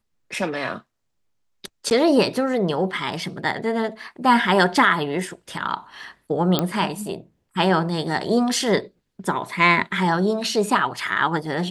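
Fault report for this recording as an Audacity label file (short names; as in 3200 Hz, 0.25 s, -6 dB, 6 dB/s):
1.900000	1.910000	gap 9.6 ms
6.590000	6.590000	pop -5 dBFS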